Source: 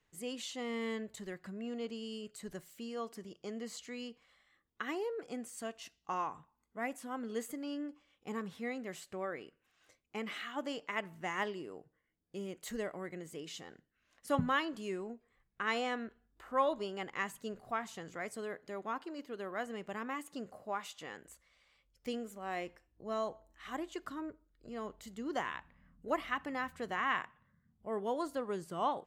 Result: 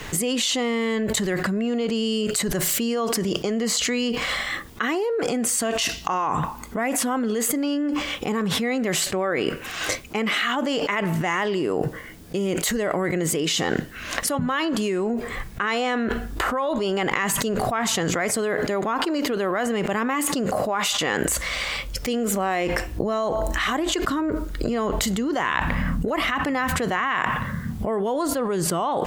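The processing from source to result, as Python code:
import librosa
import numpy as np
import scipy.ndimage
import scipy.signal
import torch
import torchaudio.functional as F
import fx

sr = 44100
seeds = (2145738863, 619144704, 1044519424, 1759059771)

y = fx.env_flatten(x, sr, amount_pct=100)
y = F.gain(torch.from_numpy(y), 3.0).numpy()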